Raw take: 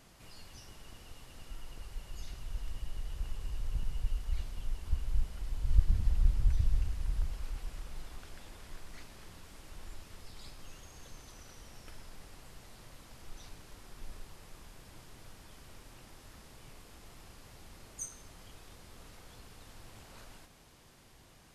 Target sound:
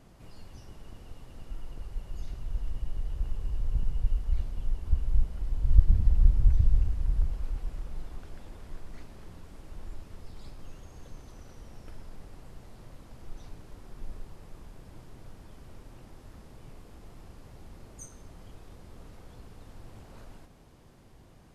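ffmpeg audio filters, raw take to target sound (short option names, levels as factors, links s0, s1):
-af "tiltshelf=f=1100:g=6.5"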